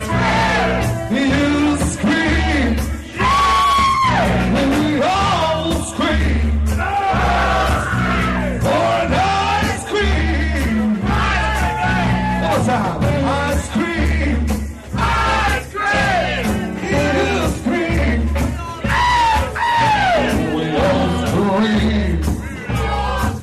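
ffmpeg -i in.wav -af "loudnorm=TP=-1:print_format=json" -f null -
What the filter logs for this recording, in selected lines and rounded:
"input_i" : "-16.9",
"input_tp" : "-6.8",
"input_lra" : "2.6",
"input_thresh" : "-26.9",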